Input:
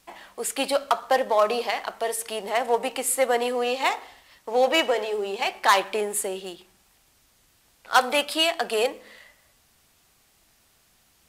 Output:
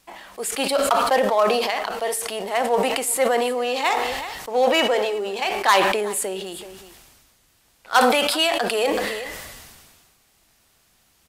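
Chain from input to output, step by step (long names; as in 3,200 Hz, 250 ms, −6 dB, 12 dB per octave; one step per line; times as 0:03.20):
single-tap delay 379 ms −22.5 dB
level that may fall only so fast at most 32 dB per second
level +1 dB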